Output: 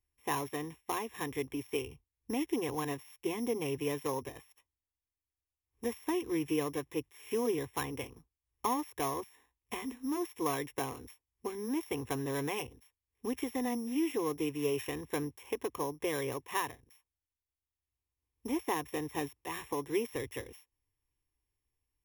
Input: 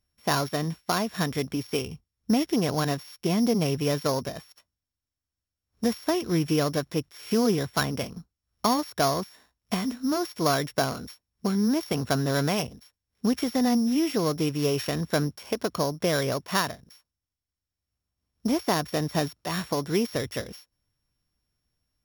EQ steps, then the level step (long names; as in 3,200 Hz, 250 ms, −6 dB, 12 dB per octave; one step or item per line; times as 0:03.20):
phaser with its sweep stopped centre 940 Hz, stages 8
−5.0 dB